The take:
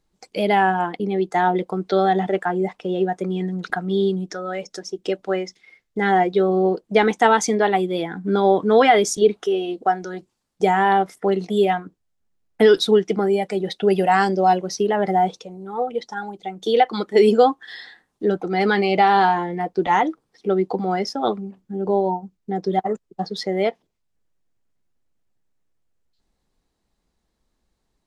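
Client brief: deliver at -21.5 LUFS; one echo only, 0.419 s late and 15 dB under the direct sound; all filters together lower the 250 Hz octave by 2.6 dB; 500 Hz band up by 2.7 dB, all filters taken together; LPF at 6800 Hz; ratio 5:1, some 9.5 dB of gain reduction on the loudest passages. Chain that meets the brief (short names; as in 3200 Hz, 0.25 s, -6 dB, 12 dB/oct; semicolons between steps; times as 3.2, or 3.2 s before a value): LPF 6800 Hz; bell 250 Hz -8 dB; bell 500 Hz +6.5 dB; compressor 5:1, threshold -17 dBFS; echo 0.419 s -15 dB; gain +1.5 dB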